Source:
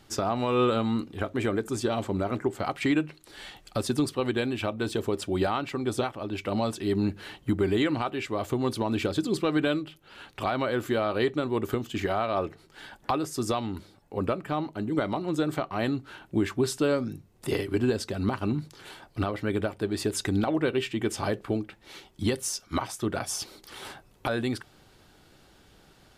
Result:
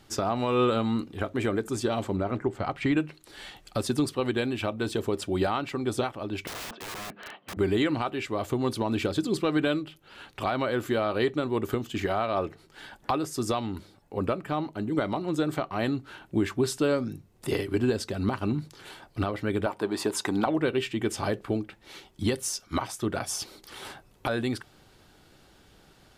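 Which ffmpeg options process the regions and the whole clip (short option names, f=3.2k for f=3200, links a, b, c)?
-filter_complex "[0:a]asettb=1/sr,asplit=3[a][b][c];[a]atrim=end=2.164[d];[b]atrim=start=2.16:end=2.97,asetpts=PTS-STARTPTS,afade=t=in:d=0.004:c=qsin,afade=t=out:st=0.806:d=0.004:c=qsin,lowpass=f=2.8k:p=1,asubboost=boost=5:cutoff=190[e];[c]atrim=start=2.966[f];[d][e]acrossfade=d=0.004:c1=hsin:c2=qsin[g];[g][f]acrossfade=d=0.004:c1=qsin:c2=hsin,asettb=1/sr,asplit=3[h][i][j];[h]atrim=end=6.474[k];[i]atrim=start=6.47:end=7.57,asetpts=PTS-STARTPTS,afade=t=in:d=0.004:c=qsin,afade=t=out:st=1.096:d=0.004:c=qsin,highpass=f=210:w=0.5412,highpass=f=210:w=1.3066,equalizer=f=330:t=q:w=4:g=-10,equalizer=f=650:t=q:w=4:g=8,equalizer=f=1.2k:t=q:w=4:g=7,lowpass=f=3.1k:w=0.5412,lowpass=f=3.1k:w=1.3066,acompressor=threshold=-28dB:ratio=4:attack=3.2:release=140:knee=1:detection=peak,aeval=exprs='(mod(44.7*val(0)+1,2)-1)/44.7':c=same[l];[j]atrim=start=7.566[m];[k][l]acrossfade=d=0.004:c1=hsin:c2=qsin[n];[n][m]acrossfade=d=0.004:c1=qsin:c2=hsin,asettb=1/sr,asplit=3[o][p][q];[o]atrim=end=19.664[r];[p]atrim=start=19.66:end=20.46,asetpts=PTS-STARTPTS,afade=t=in:d=0.004:c=qsin,afade=t=out:st=0.796:d=0.004:c=qsin,highpass=180,equalizer=f=960:w=2.1:g=12.5,acompressor=mode=upward:threshold=-38dB:ratio=2.5:attack=3.2:release=140:knee=2.83:detection=peak[s];[q]atrim=start=20.456[t];[r][s]acrossfade=d=0.004:c1=hsin:c2=qsin[u];[u][t]acrossfade=d=0.004:c1=qsin:c2=hsin"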